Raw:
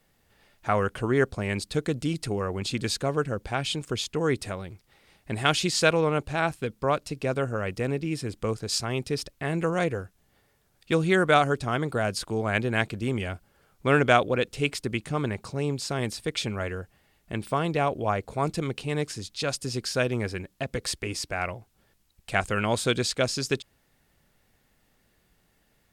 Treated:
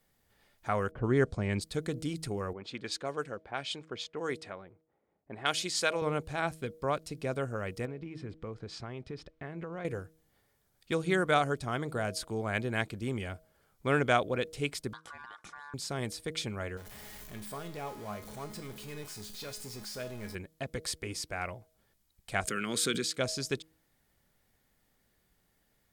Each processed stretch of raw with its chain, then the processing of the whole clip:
0.91–1.61 s: low-pass 9.2 kHz 24 dB/octave + level-controlled noise filter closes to 820 Hz, open at -21 dBFS + bass shelf 350 Hz +6 dB
2.53–6.02 s: high-pass 420 Hz 6 dB/octave + level-controlled noise filter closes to 530 Hz, open at -23.5 dBFS
7.85–9.85 s: block-companded coder 7-bit + low-pass 2.6 kHz + compression, threshold -29 dBFS
14.93–15.74 s: ring modulator 1.3 kHz + low-pass 8.9 kHz + compression 8:1, threshold -36 dBFS
16.77–20.35 s: jump at every zero crossing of -25.5 dBFS + feedback comb 210 Hz, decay 0.48 s, mix 80%
22.47–23.18 s: high-pass 160 Hz 24 dB/octave + high-order bell 730 Hz -13.5 dB 1.1 oct + swell ahead of each attack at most 30 dB/s
whole clip: treble shelf 10 kHz +5.5 dB; band-stop 2.7 kHz, Q 14; de-hum 159 Hz, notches 4; trim -6.5 dB

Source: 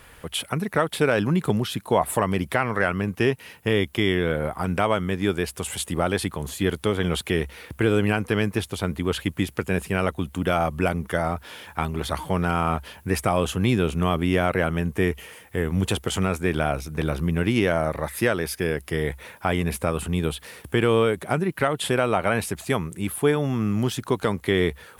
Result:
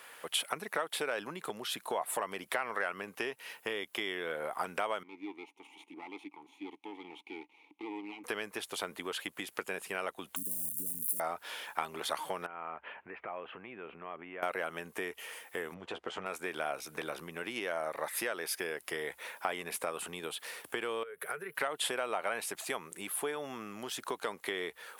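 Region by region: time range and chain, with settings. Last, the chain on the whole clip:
5.03–8.24 s: comb filter that takes the minimum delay 0.31 ms + vowel filter u
10.36–11.20 s: zero-crossing glitches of -15 dBFS + Chebyshev band-stop 250–9400 Hz, order 3
12.46–14.43 s: compression 5:1, threshold -33 dBFS + steep low-pass 2.6 kHz
15.74–16.26 s: tape spacing loss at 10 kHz 29 dB + doubling 12 ms -7 dB
21.03–21.55 s: FFT filter 150 Hz 0 dB, 300 Hz -17 dB, 440 Hz +6 dB, 620 Hz -8 dB, 910 Hz -8 dB, 1.5 kHz +5 dB, 4.7 kHz -8 dB, 7.4 kHz -9 dB, 11 kHz +6 dB + compression 10:1, threshold -29 dBFS + three bands expanded up and down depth 40%
whole clip: compression, threshold -26 dBFS; high-pass 530 Hz 12 dB/octave; trim -1.5 dB

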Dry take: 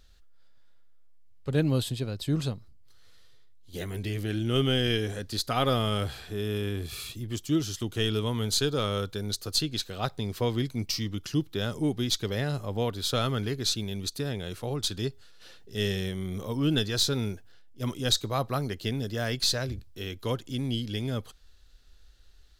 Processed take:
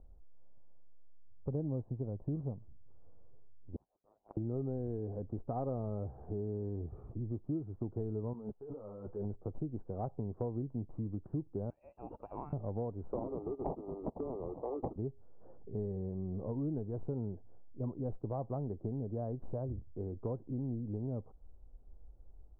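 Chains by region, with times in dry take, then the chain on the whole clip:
3.76–4.37 s: gate -28 dBFS, range -27 dB + frequency inversion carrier 3.8 kHz + loudspeaker Doppler distortion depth 0.33 ms
8.33–9.25 s: bass shelf 330 Hz -11.5 dB + compressor with a negative ratio -41 dBFS + three-phase chorus
11.70–12.53 s: frequency inversion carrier 2.8 kHz + bass shelf 150 Hz +5 dB
13.12–14.96 s: steep high-pass 290 Hz 48 dB/octave + sample-rate reducer 1.6 kHz
whole clip: steep low-pass 870 Hz 36 dB/octave; compression 4:1, threshold -38 dBFS; trim +2 dB

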